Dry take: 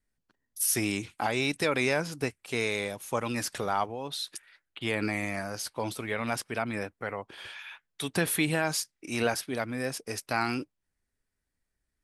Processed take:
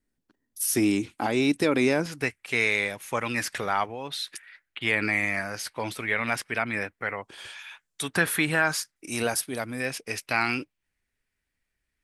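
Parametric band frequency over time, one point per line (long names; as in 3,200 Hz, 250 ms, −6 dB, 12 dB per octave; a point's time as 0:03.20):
parametric band +10 dB 1.1 octaves
290 Hz
from 0:02.06 2,000 Hz
from 0:07.24 7,600 Hz
from 0:08.03 1,500 Hz
from 0:08.96 10,000 Hz
from 0:09.80 2,400 Hz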